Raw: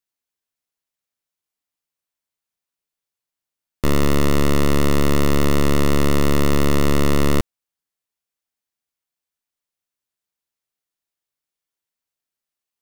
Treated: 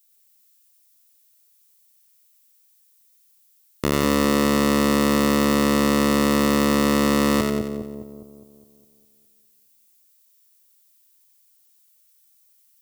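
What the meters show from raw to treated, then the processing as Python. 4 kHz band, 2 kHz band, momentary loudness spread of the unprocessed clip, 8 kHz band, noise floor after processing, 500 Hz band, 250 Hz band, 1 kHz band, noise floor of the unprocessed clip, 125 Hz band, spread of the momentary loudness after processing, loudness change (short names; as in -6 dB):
+1.5 dB, +1.5 dB, 3 LU, +1.5 dB, -60 dBFS, 0.0 dB, +2.0 dB, +2.5 dB, under -85 dBFS, -7.5 dB, 9 LU, 0.0 dB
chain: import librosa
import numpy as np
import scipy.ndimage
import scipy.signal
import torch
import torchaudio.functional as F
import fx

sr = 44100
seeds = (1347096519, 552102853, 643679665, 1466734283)

y = fx.highpass(x, sr, hz=210.0, slope=6)
y = fx.leveller(y, sr, passes=1)
y = fx.dmg_noise_colour(y, sr, seeds[0], colour='violet', level_db=-61.0)
y = fx.echo_split(y, sr, split_hz=760.0, low_ms=205, high_ms=90, feedback_pct=52, wet_db=-3.5)
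y = y * 10.0 ** (-1.0 / 20.0)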